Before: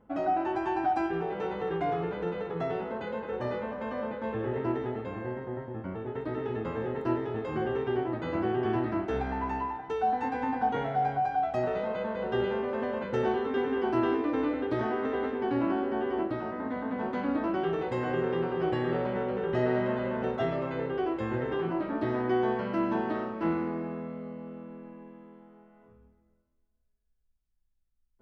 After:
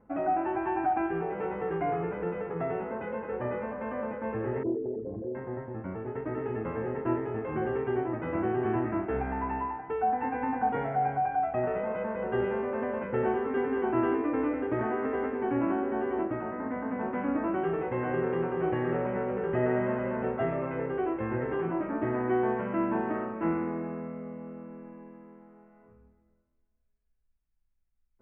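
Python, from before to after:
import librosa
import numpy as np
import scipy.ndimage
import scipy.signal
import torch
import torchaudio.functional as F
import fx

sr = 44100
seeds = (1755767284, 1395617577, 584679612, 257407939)

y = fx.envelope_sharpen(x, sr, power=3.0, at=(4.63, 5.35))
y = scipy.signal.sosfilt(scipy.signal.butter(8, 2600.0, 'lowpass', fs=sr, output='sos'), y)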